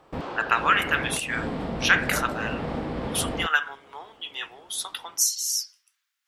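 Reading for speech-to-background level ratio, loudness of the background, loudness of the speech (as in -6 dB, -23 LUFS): 6.5 dB, -32.0 LUFS, -25.5 LUFS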